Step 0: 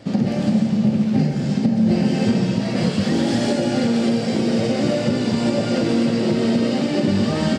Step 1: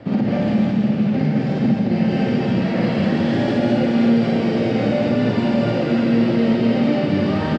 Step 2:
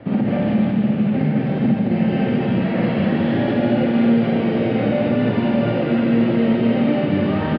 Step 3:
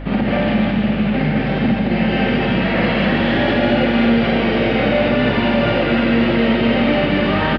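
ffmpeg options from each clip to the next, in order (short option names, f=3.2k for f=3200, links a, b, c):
-filter_complex "[0:a]lowpass=2.3k,acrossover=split=200|1600[a][b][c];[a]acompressor=threshold=-31dB:ratio=4[d];[b]acompressor=threshold=-26dB:ratio=4[e];[c]acompressor=threshold=-40dB:ratio=4[f];[d][e][f]amix=inputs=3:normalize=0,aecho=1:1:52.48|215.7:0.891|0.891,volume=3.5dB"
-af "lowpass=f=3.4k:w=0.5412,lowpass=f=3.4k:w=1.3066"
-af "aeval=exprs='val(0)+0.0398*(sin(2*PI*50*n/s)+sin(2*PI*2*50*n/s)/2+sin(2*PI*3*50*n/s)/3+sin(2*PI*4*50*n/s)/4+sin(2*PI*5*50*n/s)/5)':c=same,tiltshelf=f=750:g=-6.5,acontrast=51"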